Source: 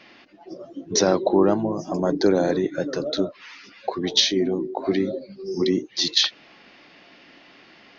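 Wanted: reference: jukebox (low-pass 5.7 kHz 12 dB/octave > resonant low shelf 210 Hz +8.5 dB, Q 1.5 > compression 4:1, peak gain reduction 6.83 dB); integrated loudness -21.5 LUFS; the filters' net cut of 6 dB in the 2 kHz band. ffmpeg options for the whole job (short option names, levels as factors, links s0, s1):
-af "lowpass=5700,lowshelf=f=210:t=q:w=1.5:g=8.5,equalizer=f=2000:t=o:g=-8,acompressor=threshold=0.1:ratio=4,volume=1.68"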